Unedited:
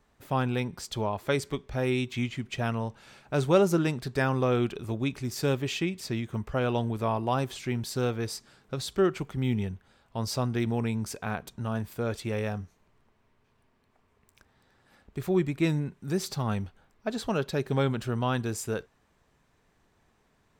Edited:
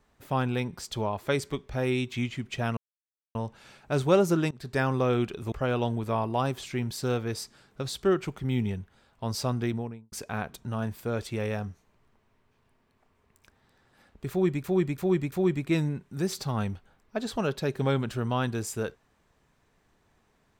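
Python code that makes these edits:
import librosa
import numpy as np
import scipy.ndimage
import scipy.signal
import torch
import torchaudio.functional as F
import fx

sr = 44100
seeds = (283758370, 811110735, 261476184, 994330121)

y = fx.studio_fade_out(x, sr, start_s=10.51, length_s=0.54)
y = fx.edit(y, sr, fx.insert_silence(at_s=2.77, length_s=0.58),
    fx.fade_in_from(start_s=3.93, length_s=0.34, curve='qsin', floor_db=-23.5),
    fx.cut(start_s=4.94, length_s=1.51),
    fx.repeat(start_s=15.23, length_s=0.34, count=4), tone=tone)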